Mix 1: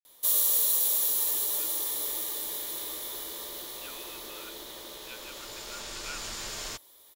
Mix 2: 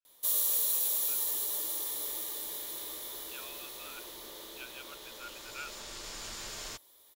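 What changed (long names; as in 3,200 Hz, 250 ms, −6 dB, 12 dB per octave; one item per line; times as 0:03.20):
speech: entry −0.50 s
background −4.5 dB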